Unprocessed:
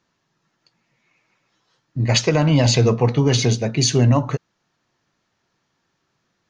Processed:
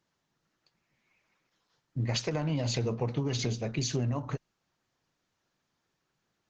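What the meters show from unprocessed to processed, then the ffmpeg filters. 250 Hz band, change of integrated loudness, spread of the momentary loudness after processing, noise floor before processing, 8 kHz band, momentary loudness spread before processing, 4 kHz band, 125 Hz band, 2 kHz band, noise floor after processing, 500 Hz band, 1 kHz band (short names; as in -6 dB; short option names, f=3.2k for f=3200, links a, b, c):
-14.0 dB, -14.5 dB, 6 LU, -72 dBFS, -14.5 dB, 10 LU, -14.0 dB, -14.0 dB, -14.5 dB, -81 dBFS, -14.5 dB, -14.5 dB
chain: -af "acompressor=threshold=-18dB:ratio=16,volume=-8dB" -ar 48000 -c:a libopus -b:a 12k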